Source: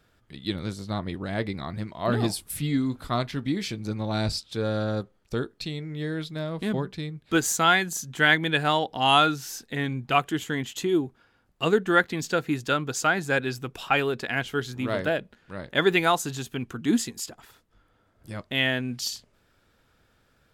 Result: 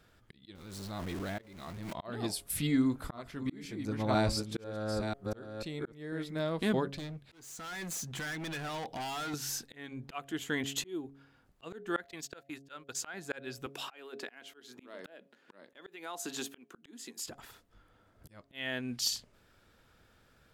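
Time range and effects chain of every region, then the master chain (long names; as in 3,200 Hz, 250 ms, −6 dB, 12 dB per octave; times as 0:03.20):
0:00.55–0:01.93: converter with a step at zero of −33 dBFS + output level in coarse steps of 12 dB
0:02.67–0:06.40: delay that plays each chunk backwards 493 ms, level −5 dB + parametric band 3,900 Hz −7 dB 1.1 octaves
0:06.94–0:09.34: downward compressor 4 to 1, threshold −28 dBFS + hard clipping −36 dBFS
0:12.11–0:13.14: low-shelf EQ 410 Hz −10 dB + noise gate −37 dBFS, range −23 dB
0:13.66–0:17.26: high-pass filter 240 Hz 24 dB per octave + downward compressor 4 to 1, threshold −30 dBFS
whole clip: hum removal 138.2 Hz, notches 5; dynamic equaliser 140 Hz, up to −6 dB, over −42 dBFS, Q 1.3; volume swells 614 ms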